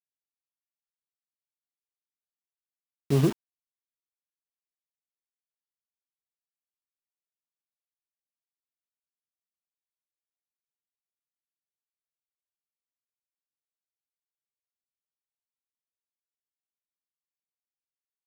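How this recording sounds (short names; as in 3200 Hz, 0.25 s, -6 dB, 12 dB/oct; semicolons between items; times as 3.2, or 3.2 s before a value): tremolo saw down 6.5 Hz, depth 40%; a quantiser's noise floor 6-bit, dither none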